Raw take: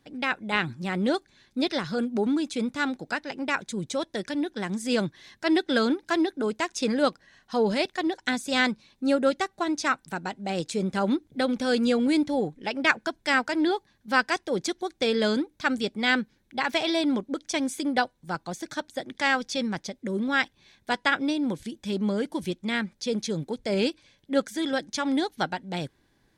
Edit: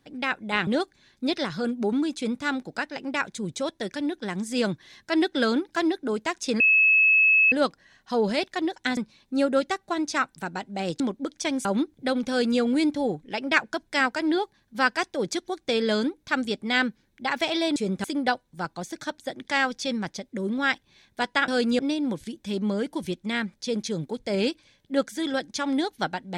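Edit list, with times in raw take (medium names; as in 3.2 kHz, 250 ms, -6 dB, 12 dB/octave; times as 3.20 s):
0.67–1.01 s: delete
6.94 s: add tone 2.59 kHz -15 dBFS 0.92 s
8.39–8.67 s: delete
10.70–10.98 s: swap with 17.09–17.74 s
11.62–11.93 s: copy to 21.18 s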